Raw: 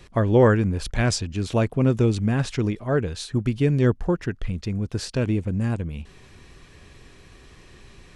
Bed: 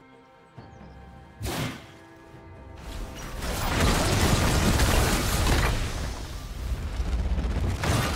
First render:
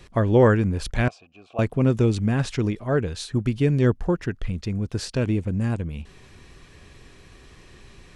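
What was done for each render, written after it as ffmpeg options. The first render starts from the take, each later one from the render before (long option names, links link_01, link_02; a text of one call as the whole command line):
ffmpeg -i in.wav -filter_complex "[0:a]asettb=1/sr,asplit=3[link_01][link_02][link_03];[link_01]atrim=end=1.084[link_04];[link_02]atrim=start=1.08:end=1.59,asetpts=PTS-STARTPTS,afade=type=in:duration=0.004:curve=qsin,afade=type=out:start_time=0.506:duration=0.004:curve=qsin,asplit=3[link_05][link_06][link_07];[link_05]bandpass=frequency=730:width_type=q:width=8,volume=0dB[link_08];[link_06]bandpass=frequency=1090:width_type=q:width=8,volume=-6dB[link_09];[link_07]bandpass=frequency=2440:width_type=q:width=8,volume=-9dB[link_10];[link_08][link_09][link_10]amix=inputs=3:normalize=0[link_11];[link_03]atrim=start=1.586[link_12];[link_04][link_11]acrossfade=duration=0.004:curve1=hsin:curve2=qsin[link_13];[link_13][link_12]acrossfade=duration=0.004:curve1=qsin:curve2=hsin" out.wav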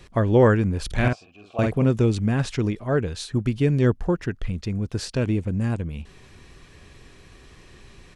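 ffmpeg -i in.wav -filter_complex "[0:a]asplit=3[link_01][link_02][link_03];[link_01]afade=type=out:start_time=0.9:duration=0.02[link_04];[link_02]asplit=2[link_05][link_06];[link_06]adelay=48,volume=-3dB[link_07];[link_05][link_07]amix=inputs=2:normalize=0,afade=type=in:start_time=0.9:duration=0.02,afade=type=out:start_time=1.83:duration=0.02[link_08];[link_03]afade=type=in:start_time=1.83:duration=0.02[link_09];[link_04][link_08][link_09]amix=inputs=3:normalize=0" out.wav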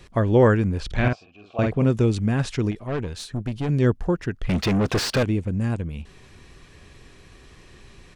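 ffmpeg -i in.wav -filter_complex "[0:a]asettb=1/sr,asplit=3[link_01][link_02][link_03];[link_01]atrim=end=0.804[link_04];[link_02]atrim=start=0.8:end=1.79,asetpts=PTS-STARTPTS,afade=type=in:duration=0.004:curve=qsin,afade=type=out:start_time=0.986:duration=0.004:curve=qsin,lowpass=5400[link_05];[link_03]atrim=start=1.786[link_06];[link_04][link_05]acrossfade=duration=0.004:curve1=hsin:curve2=qsin[link_07];[link_07][link_06]acrossfade=duration=0.004:curve1=qsin:curve2=hsin,asettb=1/sr,asplit=3[link_08][link_09][link_10];[link_08]atrim=end=2.714[link_11];[link_09]atrim=start=2.71:end=3.69,asetpts=PTS-STARTPTS,afade=type=in:duration=0.004:curve=qsin,afade=type=out:start_time=0.976:duration=0.004:curve=qsin,aeval=exprs='(tanh(12.6*val(0)+0.45)-tanh(0.45))/12.6':channel_layout=same[link_12];[link_10]atrim=start=3.686[link_13];[link_11][link_12]acrossfade=duration=0.004:curve1=hsin:curve2=qsin[link_14];[link_14][link_13]acrossfade=duration=0.004:curve1=qsin:curve2=hsin,asettb=1/sr,asplit=3[link_15][link_16][link_17];[link_15]atrim=end=4.494[link_18];[link_16]atrim=start=4.49:end=5.23,asetpts=PTS-STARTPTS,afade=type=in:duration=0.004:curve=qsin,afade=type=out:start_time=0.736:duration=0.004:curve=qsin,asplit=2[link_19][link_20];[link_20]highpass=frequency=720:poles=1,volume=35dB,asoftclip=type=tanh:threshold=-13dB[link_21];[link_19][link_21]amix=inputs=2:normalize=0,lowpass=frequency=2300:poles=1,volume=-6dB[link_22];[link_17]atrim=start=5.226[link_23];[link_18][link_22]acrossfade=duration=0.004:curve1=hsin:curve2=qsin[link_24];[link_24][link_23]acrossfade=duration=0.004:curve1=qsin:curve2=hsin" out.wav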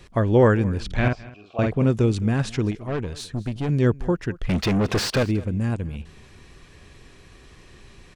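ffmpeg -i in.wav -af "aecho=1:1:212:0.0944" out.wav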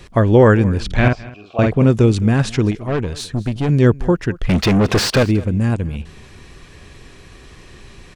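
ffmpeg -i in.wav -af "volume=7dB,alimiter=limit=-2dB:level=0:latency=1" out.wav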